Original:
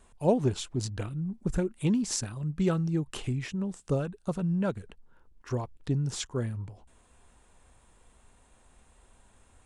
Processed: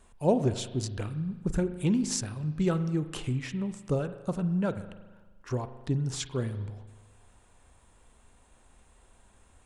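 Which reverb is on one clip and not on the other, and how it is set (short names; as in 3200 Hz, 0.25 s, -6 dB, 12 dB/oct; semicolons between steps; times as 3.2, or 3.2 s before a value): spring tank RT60 1.3 s, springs 39 ms, chirp 30 ms, DRR 11 dB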